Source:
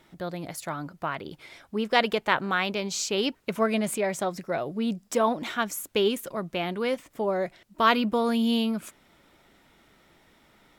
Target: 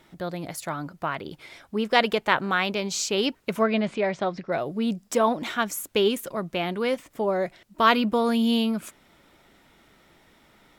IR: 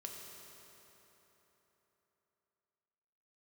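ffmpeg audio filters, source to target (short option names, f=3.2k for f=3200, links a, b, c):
-filter_complex "[0:a]asettb=1/sr,asplit=3[a][b][c];[a]atrim=end=3.624[d];[b]atrim=start=3.62:end=4.52,asetpts=PTS-STARTPTS,afade=t=in:d=0.004:c=qsin,afade=t=out:st=0.896:d=0.004:c=qsin,lowpass=f=4.5k:w=0.5412,lowpass=f=4.5k:w=1.3066[e];[c]atrim=start=4.516[f];[d][e]acrossfade=d=0.004:c1=hsin:c2=qsin[g];[g][f]acrossfade=d=0.004:c1=qsin:c2=hsin,volume=2dB"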